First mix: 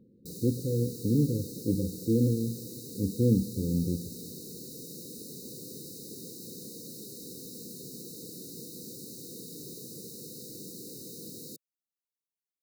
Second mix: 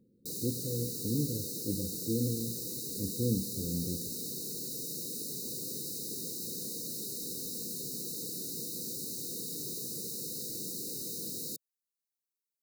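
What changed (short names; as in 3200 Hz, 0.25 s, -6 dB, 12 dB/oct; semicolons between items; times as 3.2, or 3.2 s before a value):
speech -7.0 dB; master: add high shelf 2300 Hz +7 dB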